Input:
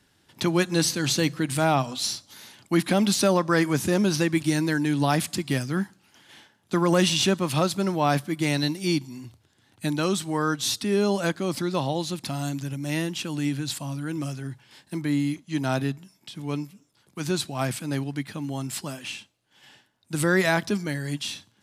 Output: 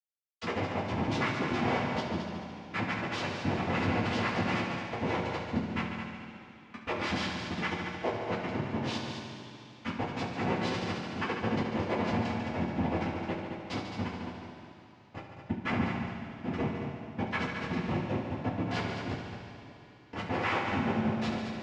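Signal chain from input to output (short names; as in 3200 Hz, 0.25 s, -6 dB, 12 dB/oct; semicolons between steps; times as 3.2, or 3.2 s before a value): random spectral dropouts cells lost 82%; 7.87–8.51 Chebyshev band-pass 520–2700 Hz, order 2; Schmitt trigger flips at -38.5 dBFS; noise vocoder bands 4; air absorption 270 m; multi-head echo 72 ms, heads all three, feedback 52%, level -10.5 dB; two-slope reverb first 0.22 s, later 3.4 s, from -18 dB, DRR -5.5 dB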